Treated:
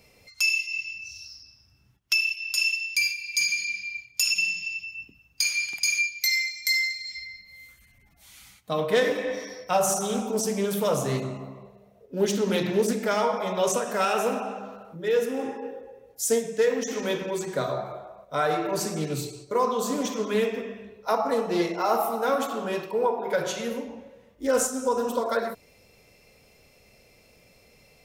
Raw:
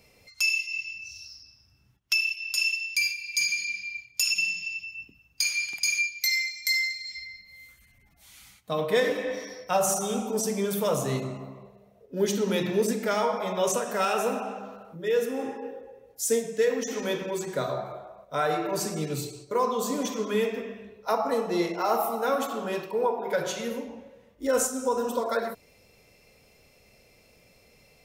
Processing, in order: loudspeaker Doppler distortion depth 0.15 ms; trim +1.5 dB

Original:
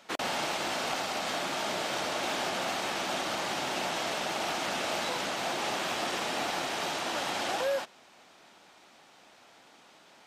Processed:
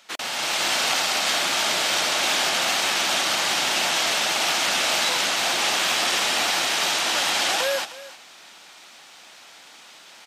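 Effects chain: on a send: delay 312 ms -17 dB; on the sum: level rider gain up to 8 dB; tilt shelf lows -7 dB, about 1.2 kHz

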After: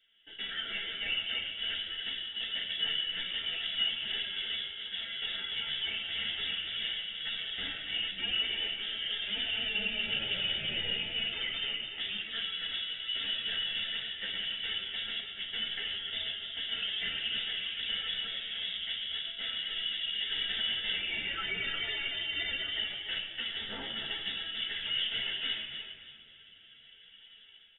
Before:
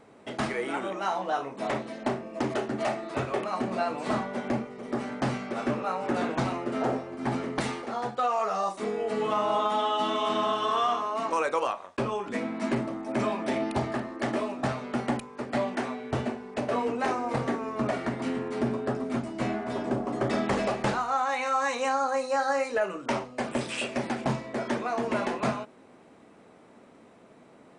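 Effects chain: level rider gain up to 12 dB; hard clipper -19 dBFS, distortion -7 dB; static phaser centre 1.7 kHz, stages 8; frequency inversion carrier 3.6 kHz; feedback delay 289 ms, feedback 28%, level -9 dB; simulated room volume 3500 m³, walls mixed, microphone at 1.6 m; three-phase chorus; trim -9 dB

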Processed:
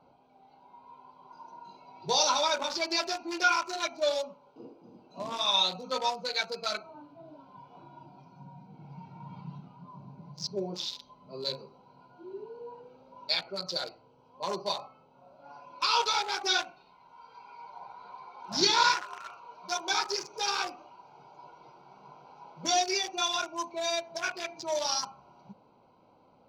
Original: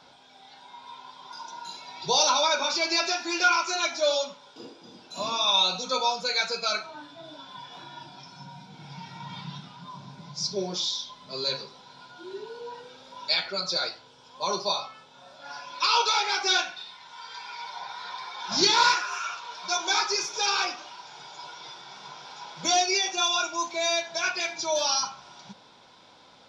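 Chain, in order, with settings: local Wiener filter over 25 samples; trim -2.5 dB

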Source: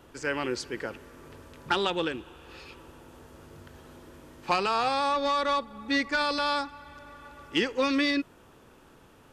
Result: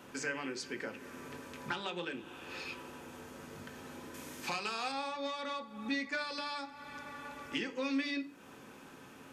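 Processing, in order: 4.14–4.92 s: treble shelf 3.5 kHz +10.5 dB; compression 4:1, threshold -40 dBFS, peak gain reduction 17.5 dB; reverberation RT60 0.40 s, pre-delay 3 ms, DRR 4.5 dB; trim +2.5 dB

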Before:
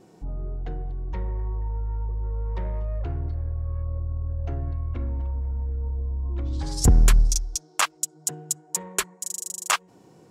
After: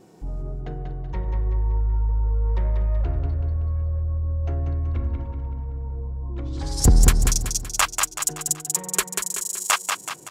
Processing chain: treble shelf 11 kHz +5.5 dB; on a send: feedback delay 189 ms, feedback 48%, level -5 dB; on the sum: trim +1.5 dB

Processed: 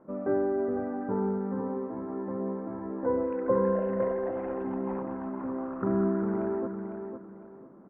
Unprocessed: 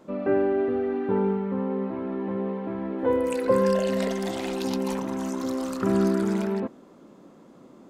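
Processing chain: inverse Chebyshev low-pass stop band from 4 kHz, stop band 50 dB; on a send: feedback delay 504 ms, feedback 28%, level -7 dB; on the sum: trim -4.5 dB

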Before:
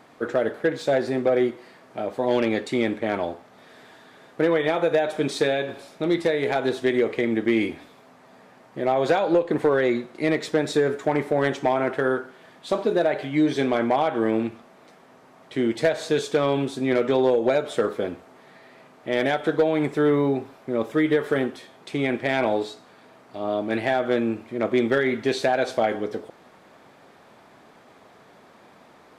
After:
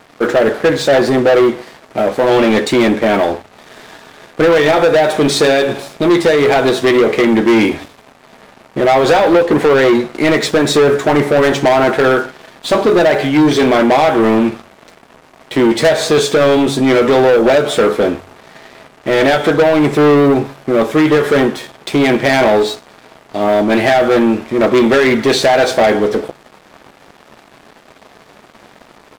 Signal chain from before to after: doubling 14 ms -10 dB; waveshaping leveller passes 3; de-hum 46.19 Hz, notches 3; trim +5 dB

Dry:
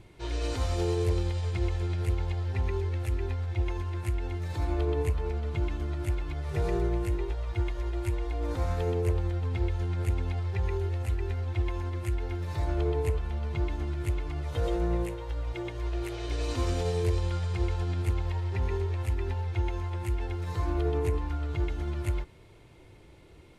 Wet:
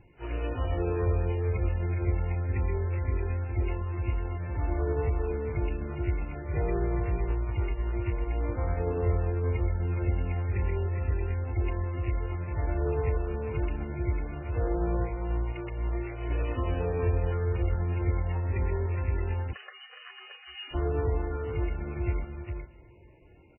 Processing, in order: dynamic bell 840 Hz, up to -3 dB, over -54 dBFS, Q 7.4; Chebyshev shaper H 7 -26 dB, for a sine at -19 dBFS; delay 414 ms -6 dB; on a send at -17.5 dB: reverberation RT60 2.7 s, pre-delay 58 ms; 19.53–20.74 s: on the sum: frequency inversion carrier 3.9 kHz; MP3 8 kbps 12 kHz

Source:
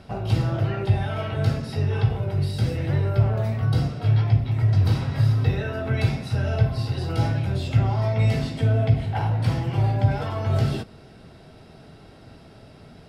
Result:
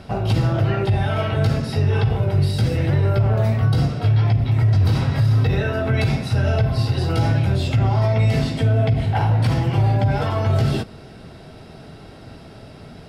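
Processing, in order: peak limiter -16.5 dBFS, peak gain reduction 9 dB; trim +6.5 dB

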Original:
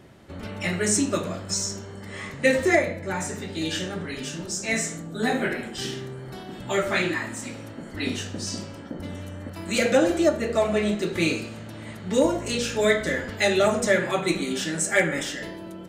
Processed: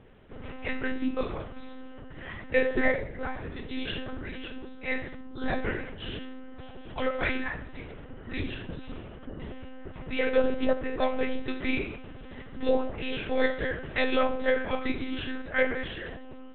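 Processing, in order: monotone LPC vocoder at 8 kHz 270 Hz; speed mistake 25 fps video run at 24 fps; trim -4 dB

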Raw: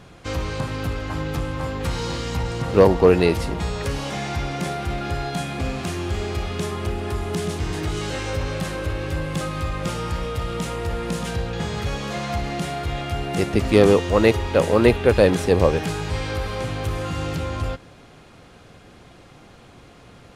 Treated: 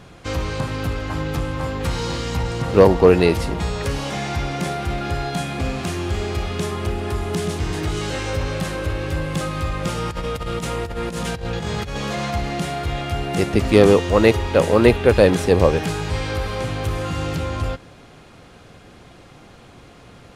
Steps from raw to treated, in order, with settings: 9.97–12.34 s: compressor with a negative ratio -27 dBFS, ratio -0.5; trim +2 dB

